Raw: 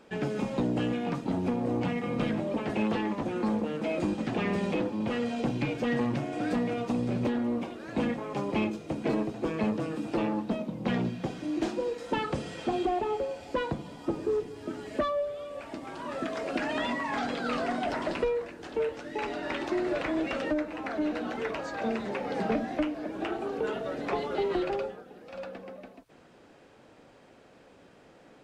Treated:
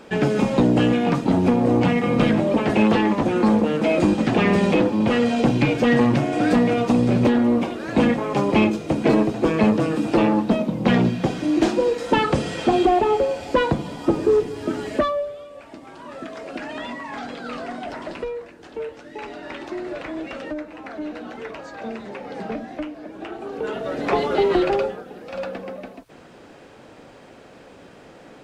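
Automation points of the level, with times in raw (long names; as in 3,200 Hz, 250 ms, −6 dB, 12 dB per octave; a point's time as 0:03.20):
0:14.85 +11.5 dB
0:15.51 −1 dB
0:23.30 −1 dB
0:24.16 +10.5 dB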